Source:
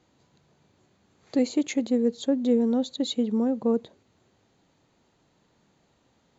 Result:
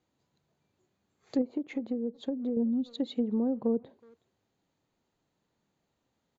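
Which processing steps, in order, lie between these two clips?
2.63–2.87 s: time-frequency box 300–2200 Hz -18 dB; spectral noise reduction 9 dB; speakerphone echo 370 ms, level -26 dB; low-pass that closes with the level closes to 620 Hz, closed at -19.5 dBFS; 1.41–2.57 s: compression, threshold -25 dBFS, peak gain reduction 7.5 dB; trim -4 dB

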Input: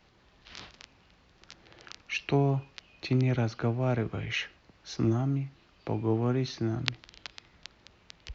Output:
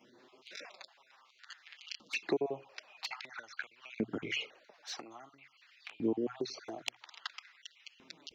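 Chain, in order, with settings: random holes in the spectrogram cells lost 32%; compression 10:1, threshold -33 dBFS, peak gain reduction 13 dB; hum notches 60/120 Hz; touch-sensitive flanger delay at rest 9.3 ms, full sweep at -33.5 dBFS; LFO high-pass saw up 0.5 Hz 230–3000 Hz; trim +3.5 dB

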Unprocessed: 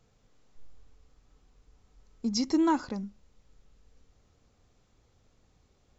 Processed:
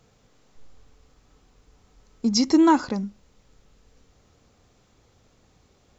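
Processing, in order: bass shelf 63 Hz -9 dB; trim +8.5 dB

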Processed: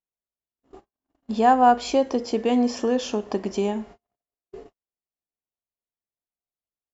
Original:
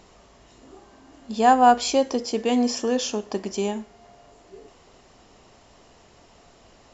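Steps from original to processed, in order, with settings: low-pass 2.2 kHz 6 dB/octave; gate -45 dBFS, range -55 dB; in parallel at +1.5 dB: compression, threshold -29 dBFS, peak gain reduction 17 dB; on the sum: trim -2 dB

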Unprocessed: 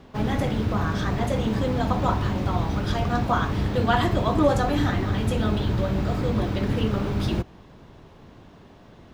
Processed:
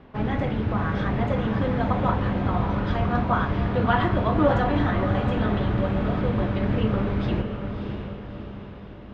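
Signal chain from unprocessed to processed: Chebyshev low-pass 2.3 kHz, order 2; echo that smears into a reverb 627 ms, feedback 51%, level -7 dB

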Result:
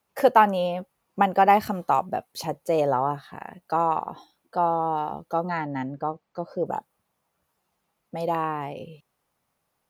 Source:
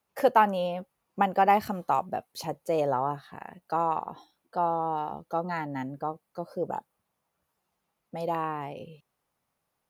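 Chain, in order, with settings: 5.49–6.66 s: boxcar filter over 4 samples; trim +4 dB

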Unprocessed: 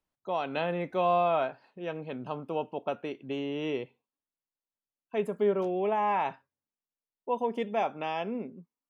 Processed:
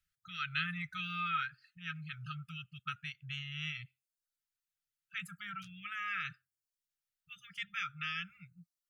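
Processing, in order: reverb removal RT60 0.51 s; brick-wall FIR band-stop 170–1200 Hz; trim +3.5 dB

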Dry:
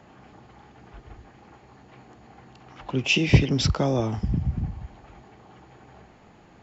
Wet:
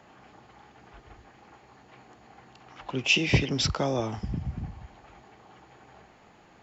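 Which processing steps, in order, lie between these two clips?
bass shelf 380 Hz -8 dB

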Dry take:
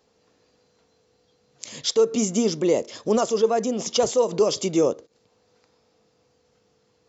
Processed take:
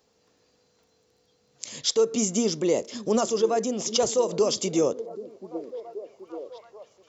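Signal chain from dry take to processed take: treble shelf 5.4 kHz +6.5 dB; crackle 13 per s -53 dBFS; on a send: repeats whose band climbs or falls 780 ms, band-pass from 280 Hz, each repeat 0.7 oct, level -11 dB; on the sum: trim -3 dB

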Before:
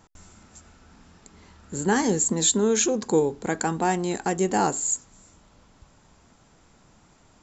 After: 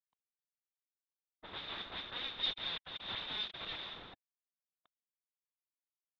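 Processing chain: expander on every frequency bin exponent 1.5; fuzz box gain 47 dB, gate -43 dBFS; spectral gate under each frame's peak -25 dB weak; peak limiter -16.5 dBFS, peak gain reduction 6.5 dB; waveshaping leveller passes 3; wavefolder -28.5 dBFS; four-pole ladder low-pass 3.1 kHz, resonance 90%; tape speed +20%; level-controlled noise filter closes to 600 Hz, open at -26.5 dBFS; trim +3.5 dB

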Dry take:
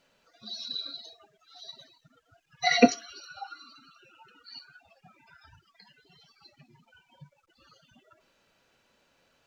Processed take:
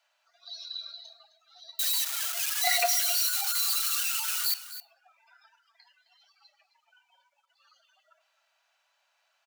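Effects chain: 1.79–4.54 s: zero-crossing glitches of -15.5 dBFS; steep high-pass 620 Hz 72 dB/octave; delay 262 ms -14 dB; reverberation RT60 0.40 s, pre-delay 3 ms, DRR 18 dB; trim -3.5 dB

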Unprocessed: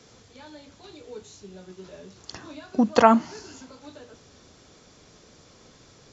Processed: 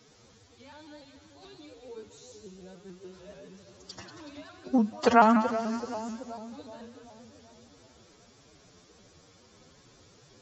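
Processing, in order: two-band feedback delay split 800 Hz, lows 224 ms, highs 110 ms, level -9 dB; time stretch by phase-locked vocoder 1.7×; vibrato with a chosen wave saw up 6.9 Hz, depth 100 cents; trim -4.5 dB

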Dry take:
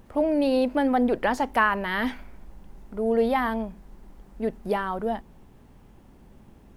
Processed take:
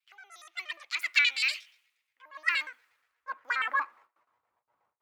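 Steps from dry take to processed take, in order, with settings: pitch shift switched off and on +10 st, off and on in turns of 80 ms; gate with hold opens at -42 dBFS; compression 2:1, threshold -38 dBFS, peak gain reduction 12 dB; high-pass sweep 1.8 kHz -> 700 Hz, 2.53–6.14 s; dynamic bell 190 Hz, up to +5 dB, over -59 dBFS, Q 1.4; speed mistake 33 rpm record played at 45 rpm; on a send at -19 dB: reverberation RT60 0.50 s, pre-delay 3 ms; on the sum: three bands expanded up and down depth 100%

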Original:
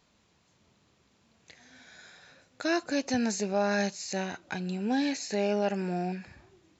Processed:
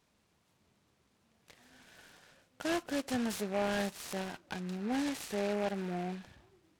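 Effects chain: delay time shaken by noise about 1.3 kHz, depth 0.067 ms; trim -5.5 dB

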